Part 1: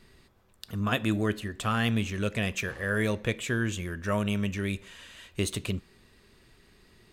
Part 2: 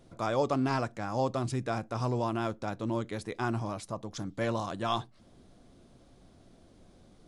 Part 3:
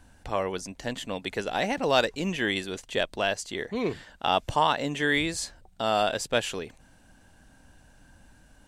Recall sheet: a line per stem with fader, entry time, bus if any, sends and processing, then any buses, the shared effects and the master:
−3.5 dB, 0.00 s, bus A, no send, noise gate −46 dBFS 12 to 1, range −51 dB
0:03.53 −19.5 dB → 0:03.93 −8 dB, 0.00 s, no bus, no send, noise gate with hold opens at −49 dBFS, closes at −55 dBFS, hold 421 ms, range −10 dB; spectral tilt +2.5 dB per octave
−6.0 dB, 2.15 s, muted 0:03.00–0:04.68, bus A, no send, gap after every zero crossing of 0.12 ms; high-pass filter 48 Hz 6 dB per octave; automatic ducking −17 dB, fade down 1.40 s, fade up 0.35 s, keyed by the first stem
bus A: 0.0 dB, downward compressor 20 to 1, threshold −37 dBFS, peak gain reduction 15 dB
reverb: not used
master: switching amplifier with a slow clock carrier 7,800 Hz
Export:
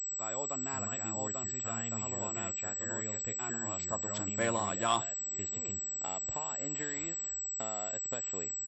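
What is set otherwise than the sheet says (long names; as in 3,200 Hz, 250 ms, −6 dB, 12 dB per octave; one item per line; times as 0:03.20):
stem 1 −3.5 dB → −15.0 dB
stem 2 −19.5 dB → −10.0 dB
stem 3: entry 2.15 s → 1.80 s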